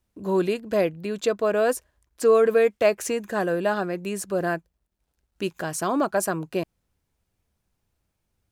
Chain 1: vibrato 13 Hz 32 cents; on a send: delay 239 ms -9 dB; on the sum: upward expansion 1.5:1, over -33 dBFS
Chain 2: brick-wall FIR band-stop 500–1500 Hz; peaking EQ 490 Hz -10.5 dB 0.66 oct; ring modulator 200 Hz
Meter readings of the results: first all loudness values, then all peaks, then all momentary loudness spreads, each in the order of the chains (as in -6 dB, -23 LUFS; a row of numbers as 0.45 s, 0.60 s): -26.5 LUFS, -34.0 LUFS; -7.0 dBFS, -17.0 dBFS; 16 LU, 7 LU